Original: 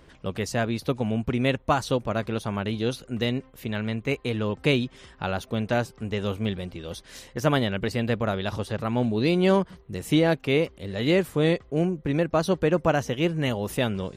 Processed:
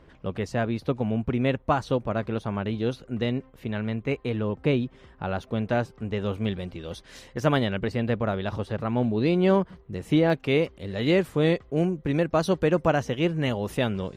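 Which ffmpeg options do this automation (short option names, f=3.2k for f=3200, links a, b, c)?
-af "asetnsamples=n=441:p=0,asendcmd='4.41 lowpass f 1100;5.31 lowpass f 2200;6.34 lowpass f 4300;7.79 lowpass f 2100;10.3 lowpass f 5000;11.78 lowpass f 11000;12.88 lowpass f 4500',lowpass=f=1.9k:p=1"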